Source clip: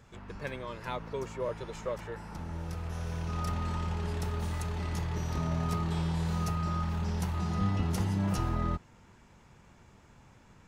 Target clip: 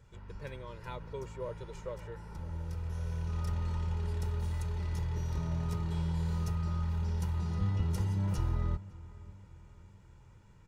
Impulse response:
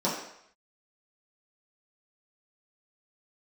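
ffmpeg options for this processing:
-filter_complex "[0:a]bass=f=250:g=7,treble=f=4k:g=1,aecho=1:1:2.1:0.48,asplit=2[a][b];[b]adelay=557,lowpass=f=2.3k:p=1,volume=-19.5dB,asplit=2[c][d];[d]adelay=557,lowpass=f=2.3k:p=1,volume=0.54,asplit=2[e][f];[f]adelay=557,lowpass=f=2.3k:p=1,volume=0.54,asplit=2[g][h];[h]adelay=557,lowpass=f=2.3k:p=1,volume=0.54[i];[a][c][e][g][i]amix=inputs=5:normalize=0,volume=-8.5dB"

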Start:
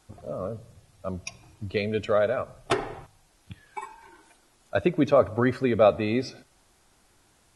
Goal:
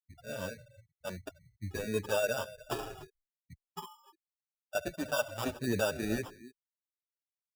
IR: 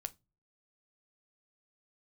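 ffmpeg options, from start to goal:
-filter_complex "[0:a]asettb=1/sr,asplit=3[a][b][c];[a]atrim=end=4.764[d];[b]atrim=start=4.76:end=5.57,asetpts=PTS-STARTPTS,afade=t=in:d=0.004:c=qsin,afade=t=out:st=0.806:d=0.004:c=qsin,lowshelf=f=520:t=q:w=3:g=-6.5[e];[c]atrim=start=5.566[f];[d][e]acrossfade=d=0.004:c1=hsin:c2=qsin[g];[g][f]acrossfade=d=0.004:c1=qsin:c2=hsin,aecho=1:1:294:0.106,alimiter=limit=-15.5dB:level=0:latency=1:release=105,afftfilt=real='re*gte(hypot(re,im),0.0224)':imag='im*gte(hypot(re,im),0.0224)':win_size=1024:overlap=0.75,acrusher=samples=21:mix=1:aa=0.000001,asplit=2[h][i];[i]adelay=7.2,afreqshift=-2.4[j];[h][j]amix=inputs=2:normalize=1,volume=-3.5dB"

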